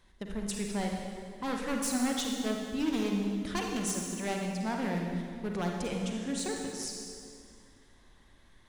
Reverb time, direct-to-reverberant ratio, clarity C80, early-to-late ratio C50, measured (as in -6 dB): 2.2 s, 0.5 dB, 3.5 dB, 1.5 dB